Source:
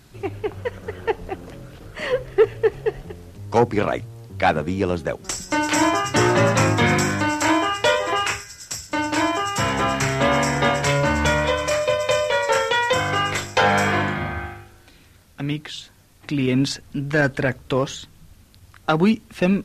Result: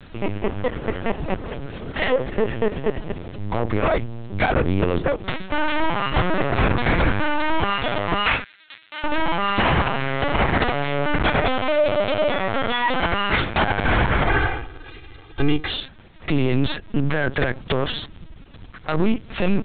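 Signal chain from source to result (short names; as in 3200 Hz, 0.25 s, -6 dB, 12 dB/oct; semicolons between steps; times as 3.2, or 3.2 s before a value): half-wave gain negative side -12 dB; LPC vocoder at 8 kHz pitch kept; 8.44–9.04 differentiator; 14.27–15.71 comb 2.5 ms, depth 84%; maximiser +19 dB; gain -8 dB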